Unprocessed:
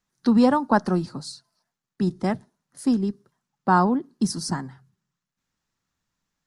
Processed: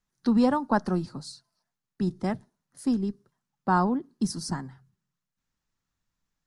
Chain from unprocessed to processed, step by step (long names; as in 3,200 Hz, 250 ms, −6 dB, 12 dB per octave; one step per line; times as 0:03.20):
low-shelf EQ 63 Hz +11 dB
level −5 dB